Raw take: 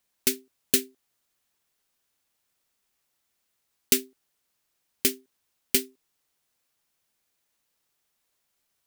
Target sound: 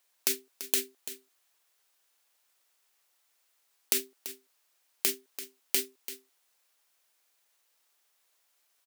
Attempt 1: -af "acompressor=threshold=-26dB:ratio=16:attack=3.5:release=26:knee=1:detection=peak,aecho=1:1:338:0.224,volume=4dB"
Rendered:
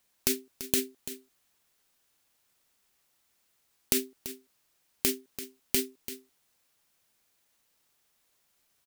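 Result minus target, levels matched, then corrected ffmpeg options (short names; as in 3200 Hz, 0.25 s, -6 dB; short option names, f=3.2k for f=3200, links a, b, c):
500 Hz band +5.0 dB
-af "acompressor=threshold=-26dB:ratio=16:attack=3.5:release=26:knee=1:detection=peak,highpass=490,aecho=1:1:338:0.224,volume=4dB"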